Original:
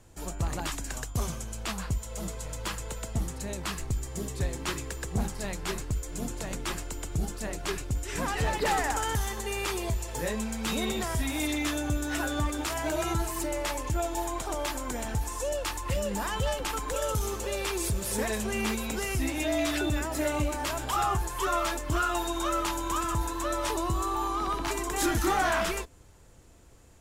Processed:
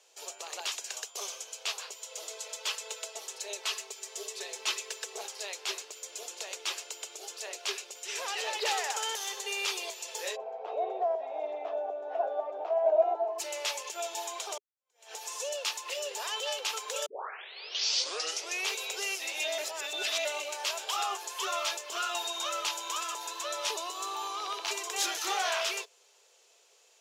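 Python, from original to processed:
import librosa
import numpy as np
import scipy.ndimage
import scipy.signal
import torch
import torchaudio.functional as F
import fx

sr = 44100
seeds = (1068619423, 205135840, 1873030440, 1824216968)

y = fx.comb(x, sr, ms=4.6, depth=0.57, at=(2.3, 5.24))
y = fx.lowpass_res(y, sr, hz=690.0, q=6.9, at=(10.35, 13.38), fade=0.02)
y = fx.edit(y, sr, fx.fade_in_span(start_s=14.58, length_s=0.56, curve='exp'),
    fx.tape_start(start_s=17.06, length_s=1.64),
    fx.reverse_span(start_s=19.58, length_s=0.67), tone=tone)
y = scipy.signal.sosfilt(scipy.signal.cheby1(5, 1.0, 410.0, 'highpass', fs=sr, output='sos'), y)
y = fx.band_shelf(y, sr, hz=4000.0, db=10.0, octaves=1.7)
y = y * librosa.db_to_amplitude(-5.0)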